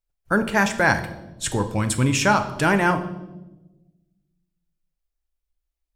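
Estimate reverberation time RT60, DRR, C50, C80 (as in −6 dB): 1.0 s, 7.0 dB, 11.5 dB, 14.0 dB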